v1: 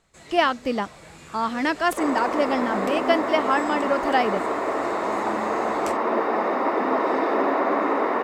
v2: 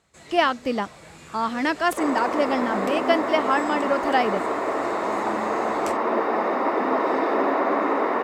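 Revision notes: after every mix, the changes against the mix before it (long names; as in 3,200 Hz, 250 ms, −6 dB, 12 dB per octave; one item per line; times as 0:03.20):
master: add high-pass filter 50 Hz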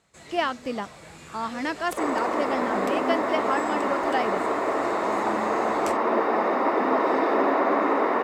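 speech −5.5 dB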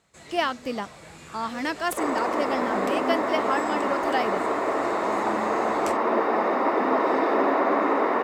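speech: add high-shelf EQ 5,800 Hz +9.5 dB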